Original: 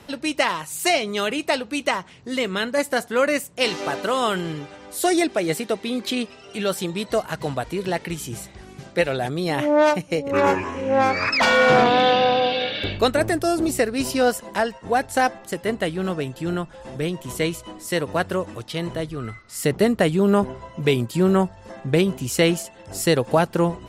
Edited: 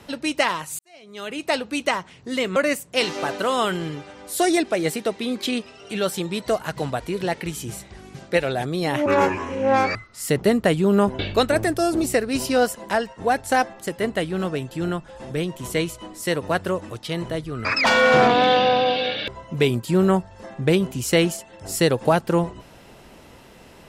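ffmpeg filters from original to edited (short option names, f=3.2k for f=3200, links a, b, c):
-filter_complex "[0:a]asplit=8[a][b][c][d][e][f][g][h];[a]atrim=end=0.79,asetpts=PTS-STARTPTS,afade=t=out:st=0.786:d=0.004:c=hsin[i];[b]atrim=start=0.79:end=2.562,asetpts=PTS-STARTPTS,afade=t=in:d=0.76:c=qua[j];[c]atrim=start=3.198:end=9.702[k];[d]atrim=start=10.318:end=11.212[l];[e]atrim=start=19.298:end=20.542[m];[f]atrim=start=12.838:end=19.302[n];[g]atrim=start=11.208:end=12.842[o];[h]atrim=start=20.538[p];[i][j]concat=n=2:v=0:a=1[q];[q][k]acrossfade=d=0.004:c1=hsin:c2=hsin[r];[r][l]acrossfade=d=0.004:c1=hsin:c2=hsin[s];[s][m]acrossfade=d=0.004:c1=hsin:c2=hsin[t];[t][n]acrossfade=d=0.004:c1=hsin:c2=hsin[u];[u][o]acrossfade=d=0.004:c1=hsin:c2=hsin[v];[v][p]acrossfade=d=0.004:c1=hsin:c2=hsin"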